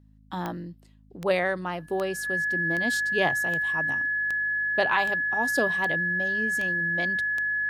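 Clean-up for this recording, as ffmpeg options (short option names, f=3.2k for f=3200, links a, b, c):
-af "adeclick=t=4,bandreject=f=52.5:t=h:w=4,bandreject=f=105:t=h:w=4,bandreject=f=157.5:t=h:w=4,bandreject=f=210:t=h:w=4,bandreject=f=262.5:t=h:w=4,bandreject=f=1.7k:w=30"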